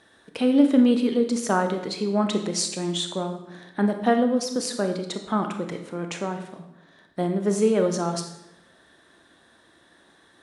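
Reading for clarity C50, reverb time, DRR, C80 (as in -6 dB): 8.0 dB, 0.95 s, 5.5 dB, 10.5 dB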